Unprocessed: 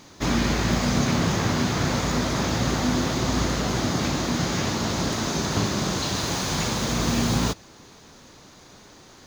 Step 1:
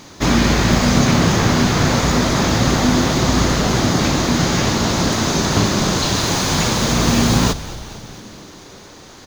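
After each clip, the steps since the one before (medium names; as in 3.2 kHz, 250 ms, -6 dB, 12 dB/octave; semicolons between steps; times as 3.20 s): frequency-shifting echo 224 ms, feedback 65%, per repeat -89 Hz, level -16 dB; trim +8 dB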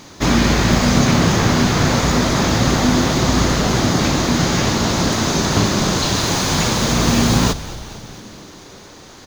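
no audible change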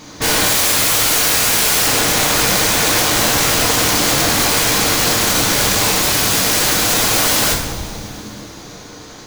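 time-frequency box 0.46–1.85 s, 1.5–5 kHz +9 dB; integer overflow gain 14 dB; two-slope reverb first 0.63 s, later 3.4 s, from -20 dB, DRR -2 dB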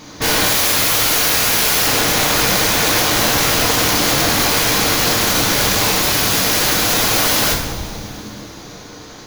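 peaking EQ 8.2 kHz -7 dB 0.35 oct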